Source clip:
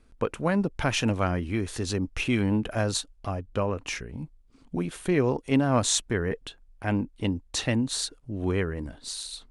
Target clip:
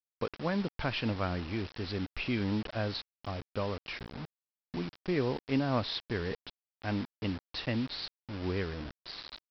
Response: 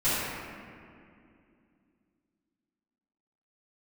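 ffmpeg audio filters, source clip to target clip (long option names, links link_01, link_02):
-af "agate=range=-33dB:threshold=-44dB:ratio=3:detection=peak,aresample=11025,acrusher=bits=5:mix=0:aa=0.000001,aresample=44100,volume=-7dB"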